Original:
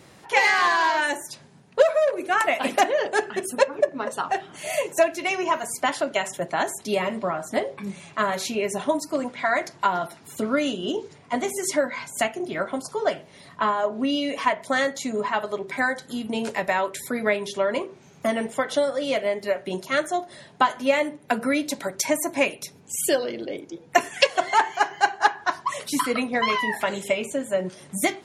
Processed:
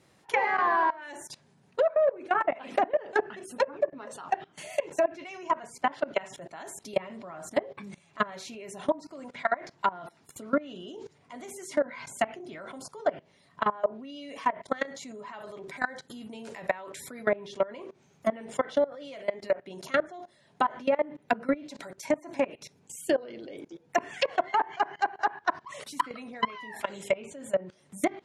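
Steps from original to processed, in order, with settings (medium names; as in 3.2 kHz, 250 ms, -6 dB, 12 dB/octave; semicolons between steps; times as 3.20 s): level held to a coarse grid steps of 21 dB; low-pass that closes with the level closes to 1.2 kHz, closed at -21 dBFS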